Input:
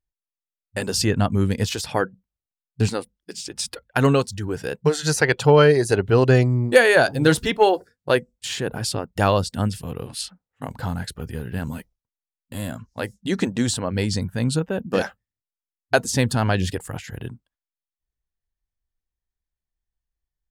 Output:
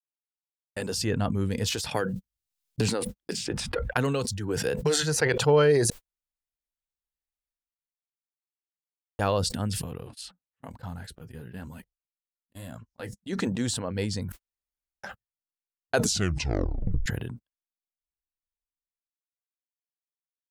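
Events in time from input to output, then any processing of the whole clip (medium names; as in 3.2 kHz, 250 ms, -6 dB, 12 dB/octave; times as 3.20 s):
1.91–5.16 s: three bands compressed up and down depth 100%
5.90–9.19 s: room tone
9.98–13.33 s: flange 1.1 Hz, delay 0.9 ms, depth 7.3 ms, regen -46%
14.32–15.03 s: room tone
15.96 s: tape stop 1.10 s
whole clip: gate -36 dBFS, range -48 dB; dynamic bell 480 Hz, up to +5 dB, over -35 dBFS, Q 6.4; decay stretcher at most 39 dB/s; trim -8 dB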